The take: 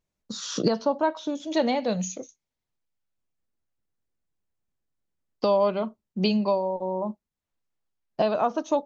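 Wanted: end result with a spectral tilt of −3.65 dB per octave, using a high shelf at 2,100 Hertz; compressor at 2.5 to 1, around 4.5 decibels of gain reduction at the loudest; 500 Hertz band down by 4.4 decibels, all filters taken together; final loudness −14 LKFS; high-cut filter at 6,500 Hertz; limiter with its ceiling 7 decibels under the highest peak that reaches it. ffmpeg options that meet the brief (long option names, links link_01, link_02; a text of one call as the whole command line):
ffmpeg -i in.wav -af "lowpass=6500,equalizer=frequency=500:width_type=o:gain=-6.5,highshelf=frequency=2100:gain=8.5,acompressor=threshold=-26dB:ratio=2.5,volume=18dB,alimiter=limit=-3dB:level=0:latency=1" out.wav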